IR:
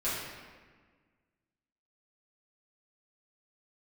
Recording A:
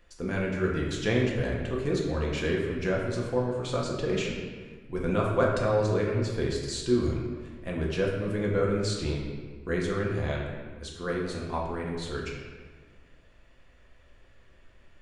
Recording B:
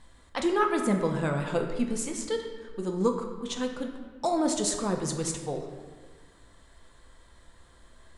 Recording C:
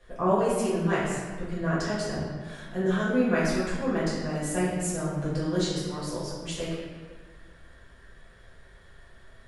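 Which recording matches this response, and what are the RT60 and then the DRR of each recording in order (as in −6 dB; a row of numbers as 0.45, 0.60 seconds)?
C; 1.5, 1.5, 1.5 seconds; −3.0, 2.5, −11.5 decibels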